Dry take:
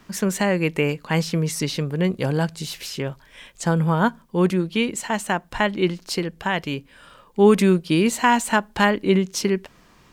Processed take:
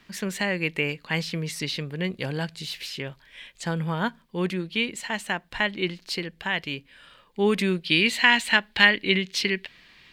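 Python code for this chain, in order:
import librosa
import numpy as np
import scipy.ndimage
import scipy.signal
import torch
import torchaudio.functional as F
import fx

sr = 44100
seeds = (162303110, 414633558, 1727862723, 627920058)

y = fx.band_shelf(x, sr, hz=2800.0, db=fx.steps((0.0, 8.5), (7.81, 16.0)), octaves=1.7)
y = F.gain(torch.from_numpy(y), -8.0).numpy()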